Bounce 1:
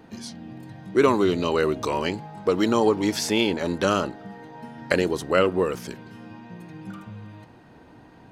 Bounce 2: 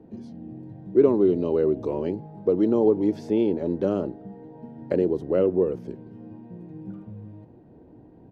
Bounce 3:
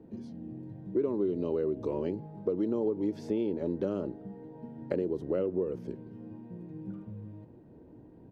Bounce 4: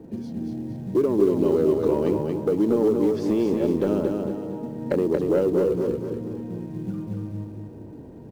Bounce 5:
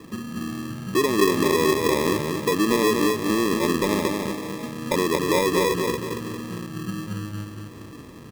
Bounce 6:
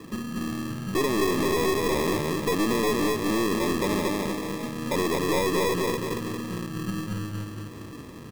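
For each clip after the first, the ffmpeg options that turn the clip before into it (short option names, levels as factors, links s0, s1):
-filter_complex "[0:a]firequalizer=gain_entry='entry(250,0);entry(360,3);entry(1200,-18);entry(7800,-29)':delay=0.05:min_phase=1,acrossover=split=130[s0][s1];[s0]alimiter=level_in=5.96:limit=0.0631:level=0:latency=1,volume=0.168[s2];[s2][s1]amix=inputs=2:normalize=0"
-af "equalizer=f=740:t=o:w=0.2:g=-7,acompressor=threshold=0.0631:ratio=4,volume=0.708"
-filter_complex "[0:a]asoftclip=type=tanh:threshold=0.0891,asplit=2[s0][s1];[s1]acrusher=bits=5:mode=log:mix=0:aa=0.000001,volume=0.398[s2];[s0][s2]amix=inputs=2:normalize=0,aecho=1:1:231|462|693|924|1155:0.631|0.271|0.117|0.0502|0.0216,volume=2.11"
-af "acrusher=samples=30:mix=1:aa=0.000001"
-af "aeval=exprs='(tanh(12.6*val(0)+0.35)-tanh(0.35))/12.6':c=same,volume=1.19"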